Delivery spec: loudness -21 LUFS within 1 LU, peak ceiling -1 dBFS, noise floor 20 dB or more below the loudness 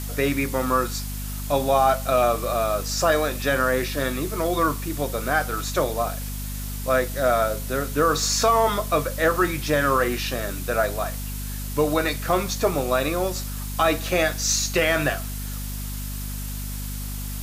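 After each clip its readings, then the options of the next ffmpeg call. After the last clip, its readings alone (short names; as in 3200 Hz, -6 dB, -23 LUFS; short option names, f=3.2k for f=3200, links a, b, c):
hum 50 Hz; harmonics up to 250 Hz; hum level -29 dBFS; noise floor -31 dBFS; noise floor target -44 dBFS; loudness -23.5 LUFS; peak -8.5 dBFS; loudness target -21.0 LUFS
-> -af "bandreject=f=50:t=h:w=6,bandreject=f=100:t=h:w=6,bandreject=f=150:t=h:w=6,bandreject=f=200:t=h:w=6,bandreject=f=250:t=h:w=6"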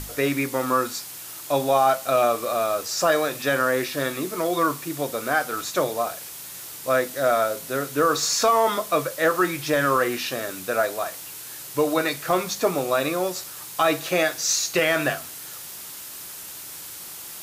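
hum none; noise floor -38 dBFS; noise floor target -43 dBFS
-> -af "afftdn=nr=6:nf=-38"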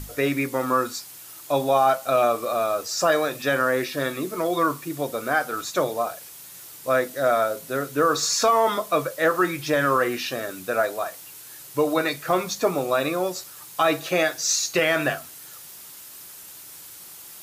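noise floor -43 dBFS; noise floor target -44 dBFS
-> -af "afftdn=nr=6:nf=-43"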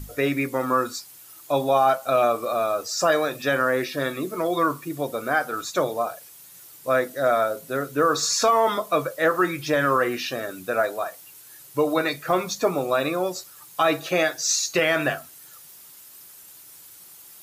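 noise floor -47 dBFS; loudness -23.5 LUFS; peak -9.5 dBFS; loudness target -21.0 LUFS
-> -af "volume=2.5dB"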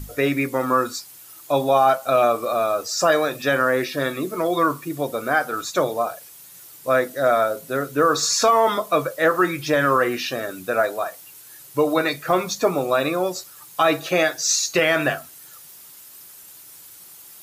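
loudness -21.0 LUFS; peak -7.0 dBFS; noise floor -45 dBFS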